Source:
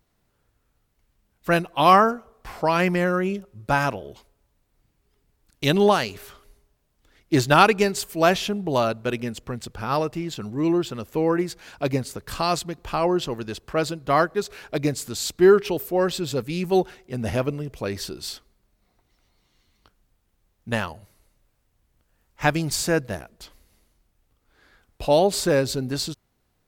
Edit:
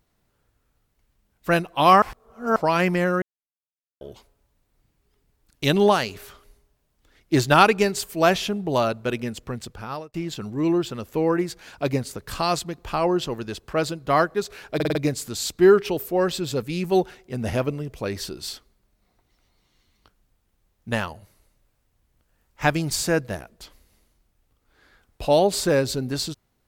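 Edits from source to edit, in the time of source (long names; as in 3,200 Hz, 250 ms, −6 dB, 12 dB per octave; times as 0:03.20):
0:02.02–0:02.56: reverse
0:03.22–0:04.01: silence
0:09.60–0:10.14: fade out
0:14.75: stutter 0.05 s, 5 plays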